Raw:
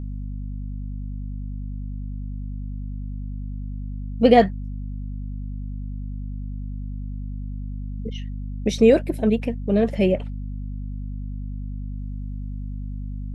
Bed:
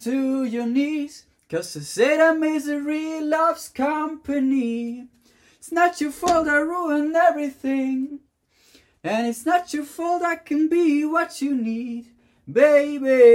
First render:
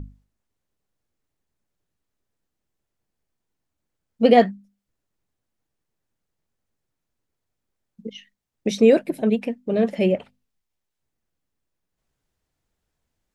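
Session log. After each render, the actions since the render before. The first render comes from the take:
mains-hum notches 50/100/150/200/250 Hz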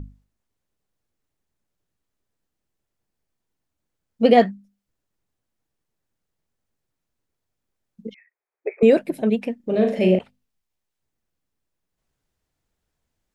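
0:08.14–0:08.83: linear-phase brick-wall band-pass 340–2,600 Hz
0:09.56–0:10.19: flutter between parallel walls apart 6.5 metres, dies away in 0.43 s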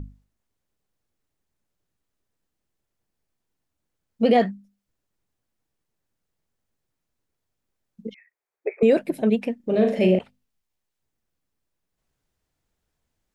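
brickwall limiter −9 dBFS, peak gain reduction 5.5 dB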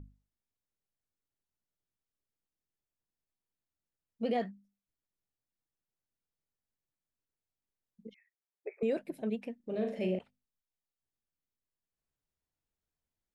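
level −14.5 dB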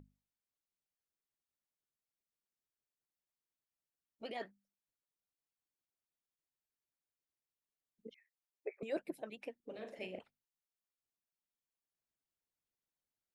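low-shelf EQ 140 Hz −10 dB
harmonic and percussive parts rebalanced harmonic −17 dB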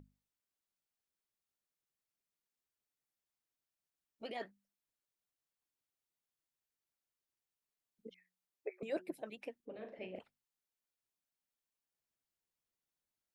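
0:08.06–0:09.08: hum removal 183 Hz, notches 2
0:09.65–0:10.16: high-frequency loss of the air 320 metres

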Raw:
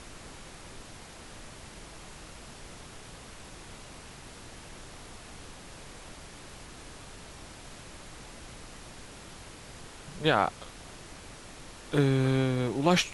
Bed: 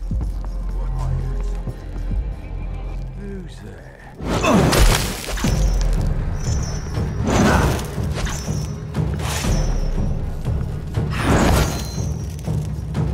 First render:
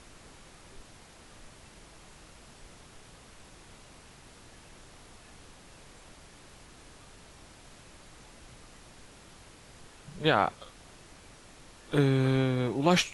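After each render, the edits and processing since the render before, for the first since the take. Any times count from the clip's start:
noise reduction from a noise print 6 dB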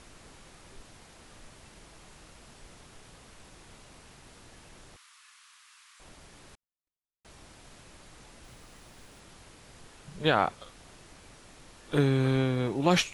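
0:04.96–0:06.00: elliptic high-pass filter 1,100 Hz, stop band 60 dB
0:06.55–0:07.25: noise gate −46 dBFS, range −59 dB
0:08.44–0:09.20: log-companded quantiser 6 bits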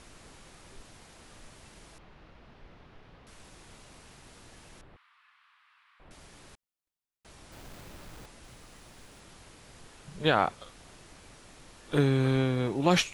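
0:01.98–0:03.27: high-frequency loss of the air 300 metres
0:04.81–0:06.11: high-frequency loss of the air 460 metres
0:07.52–0:08.26: each half-wave held at its own peak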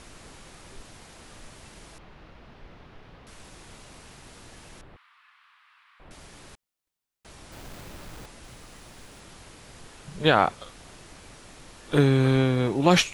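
level +5 dB

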